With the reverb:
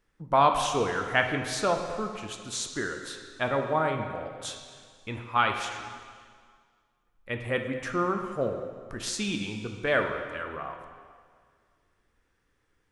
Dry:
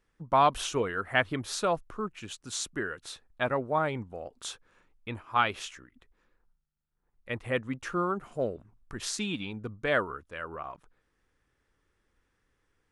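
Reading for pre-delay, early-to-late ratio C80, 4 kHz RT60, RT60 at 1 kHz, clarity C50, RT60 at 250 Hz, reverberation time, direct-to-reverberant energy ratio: 6 ms, 7.0 dB, 1.8 s, 1.9 s, 5.5 dB, 2.0 s, 1.9 s, 4.0 dB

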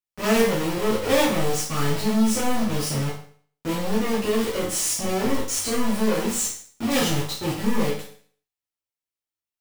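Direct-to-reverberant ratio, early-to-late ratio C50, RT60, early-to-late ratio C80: −8.5 dB, 4.0 dB, 0.50 s, 9.5 dB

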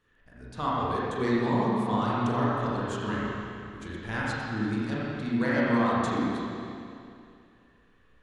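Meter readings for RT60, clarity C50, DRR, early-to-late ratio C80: 2.5 s, −4.0 dB, −7.5 dB, −3.0 dB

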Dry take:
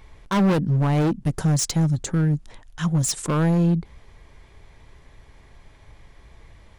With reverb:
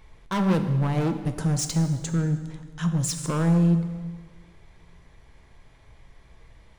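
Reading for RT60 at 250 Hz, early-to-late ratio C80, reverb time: 1.7 s, 10.5 dB, 1.6 s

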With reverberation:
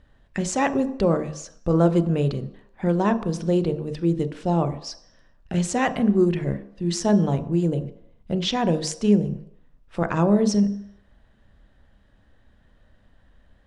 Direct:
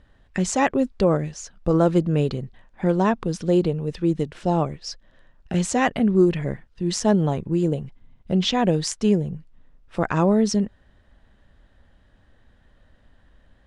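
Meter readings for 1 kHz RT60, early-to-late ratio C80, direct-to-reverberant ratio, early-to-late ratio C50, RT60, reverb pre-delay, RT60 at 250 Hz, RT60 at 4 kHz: 0.75 s, 17.0 dB, 11.0 dB, 14.0 dB, 0.75 s, 29 ms, 0.55 s, 0.70 s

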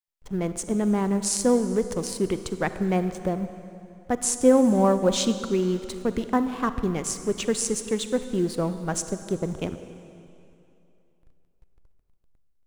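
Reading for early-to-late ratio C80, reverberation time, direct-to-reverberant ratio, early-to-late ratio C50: 11.5 dB, 2.8 s, 10.5 dB, 11.0 dB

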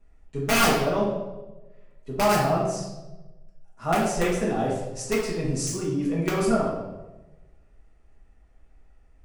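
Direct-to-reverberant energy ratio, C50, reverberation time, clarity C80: −7.0 dB, 2.0 dB, 1.1 s, 5.0 dB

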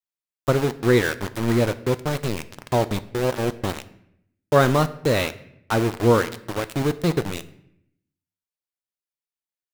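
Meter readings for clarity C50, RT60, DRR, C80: 17.0 dB, 0.75 s, 12.0 dB, 19.0 dB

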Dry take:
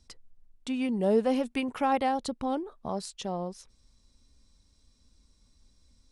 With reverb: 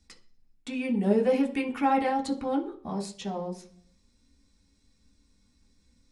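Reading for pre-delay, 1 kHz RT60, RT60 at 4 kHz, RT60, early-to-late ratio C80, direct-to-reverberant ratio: 3 ms, 0.40 s, 0.55 s, 0.50 s, 18.0 dB, −1.5 dB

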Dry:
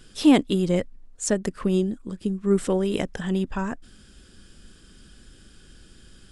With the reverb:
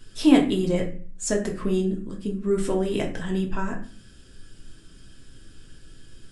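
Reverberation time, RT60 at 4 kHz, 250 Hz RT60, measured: 0.40 s, 0.30 s, 0.65 s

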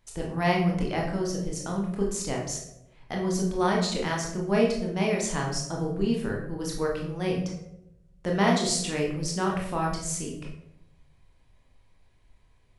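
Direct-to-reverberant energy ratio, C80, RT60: −2.0 dB, 8.0 dB, 0.90 s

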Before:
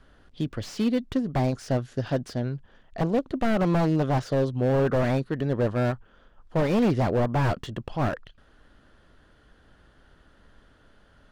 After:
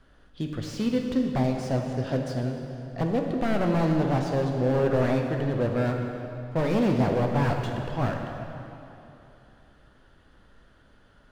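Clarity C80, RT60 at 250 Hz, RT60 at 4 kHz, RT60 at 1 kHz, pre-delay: 4.5 dB, 3.0 s, 2.3 s, 3.0 s, 8 ms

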